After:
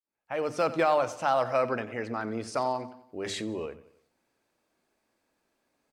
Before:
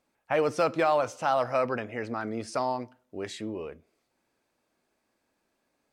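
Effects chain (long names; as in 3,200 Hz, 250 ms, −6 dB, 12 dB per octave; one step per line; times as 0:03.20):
fade in at the beginning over 0.75 s
mains-hum notches 50/100/150/200/250 Hz
on a send: repeating echo 91 ms, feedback 48%, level −16 dB
0:03.25–0:03.66: on the sum: envelope flattener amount 70%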